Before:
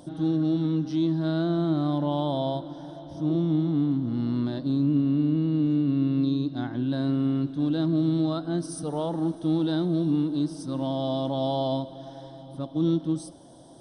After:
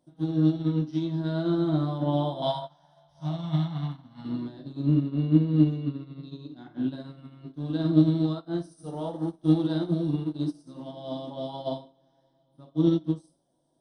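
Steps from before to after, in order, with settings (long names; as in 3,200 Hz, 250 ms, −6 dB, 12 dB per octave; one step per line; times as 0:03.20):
0:02.42–0:04.25: drawn EQ curve 200 Hz 0 dB, 360 Hz −21 dB, 690 Hz +7 dB, 980 Hz +9 dB
convolution reverb RT60 0.40 s, pre-delay 5 ms, DRR −0.5 dB
expander for the loud parts 2.5 to 1, over −36 dBFS
level +3 dB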